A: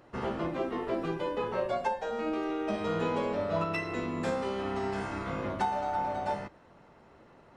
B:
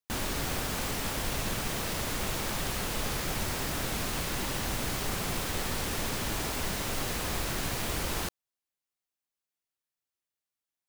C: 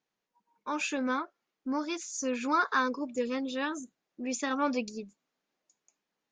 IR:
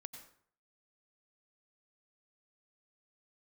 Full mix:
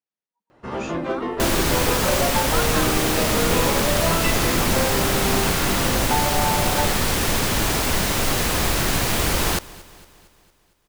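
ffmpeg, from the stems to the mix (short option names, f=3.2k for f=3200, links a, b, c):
-filter_complex "[0:a]volume=24.5dB,asoftclip=hard,volume=-24.5dB,adelay=500,volume=-3dB[a];[1:a]adelay=1300,volume=1dB,asplit=2[b][c];[c]volume=-21dB[d];[2:a]volume=-13dB[e];[d]aecho=0:1:229|458|687|916|1145|1374|1603|1832:1|0.54|0.292|0.157|0.085|0.0459|0.0248|0.0134[f];[a][b][e][f]amix=inputs=4:normalize=0,dynaudnorm=f=200:g=7:m=10.5dB"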